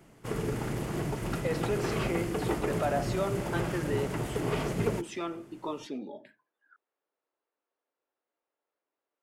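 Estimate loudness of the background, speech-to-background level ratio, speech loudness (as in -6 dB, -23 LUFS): -33.0 LUFS, -2.5 dB, -35.5 LUFS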